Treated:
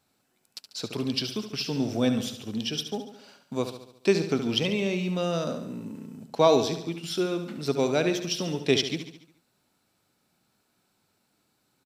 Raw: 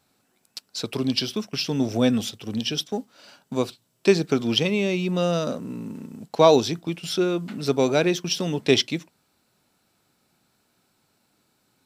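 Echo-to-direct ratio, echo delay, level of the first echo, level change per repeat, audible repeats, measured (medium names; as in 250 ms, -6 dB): -8.0 dB, 71 ms, -9.5 dB, -5.5 dB, 5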